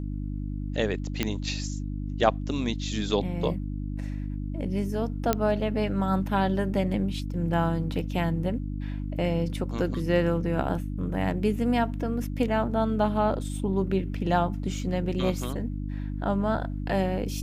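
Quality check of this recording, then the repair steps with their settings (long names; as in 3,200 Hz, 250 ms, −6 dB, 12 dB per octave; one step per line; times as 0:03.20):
mains hum 50 Hz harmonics 6 −32 dBFS
0:01.23: click −11 dBFS
0:05.33: click −8 dBFS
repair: click removal
hum removal 50 Hz, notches 6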